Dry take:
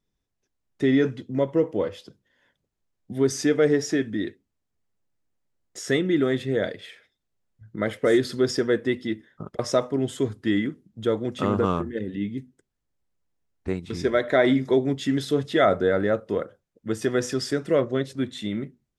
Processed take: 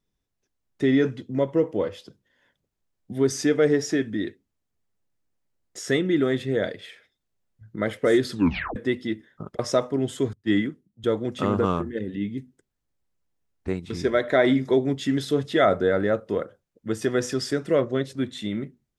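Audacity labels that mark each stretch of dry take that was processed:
8.320000	8.320000	tape stop 0.44 s
10.330000	11.040000	three-band expander depth 100%

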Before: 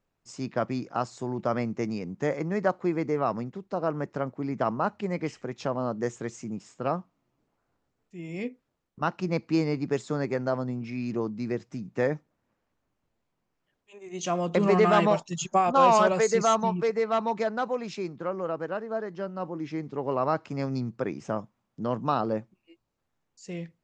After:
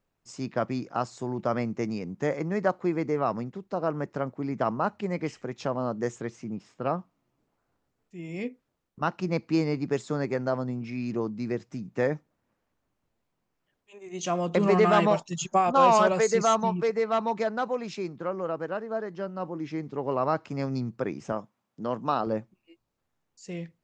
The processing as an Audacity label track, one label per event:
6.210000	6.990000	bell 7400 Hz -12.5 dB 0.73 oct
21.320000	22.270000	HPF 220 Hz 6 dB/oct

